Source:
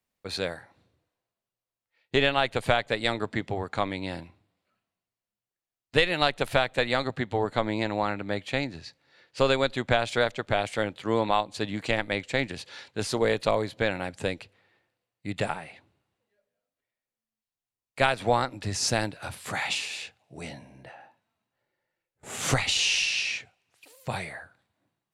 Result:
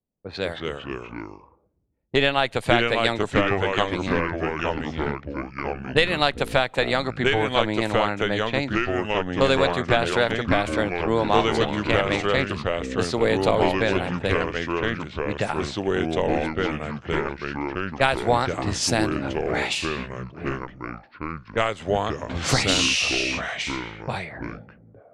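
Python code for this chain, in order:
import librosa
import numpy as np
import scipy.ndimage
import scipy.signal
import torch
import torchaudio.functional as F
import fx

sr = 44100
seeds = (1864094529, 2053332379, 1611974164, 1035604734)

y = fx.env_lowpass(x, sr, base_hz=440.0, full_db=-25.0)
y = fx.echo_pitch(y, sr, ms=153, semitones=-3, count=3, db_per_echo=-3.0)
y = y * 10.0 ** (3.0 / 20.0)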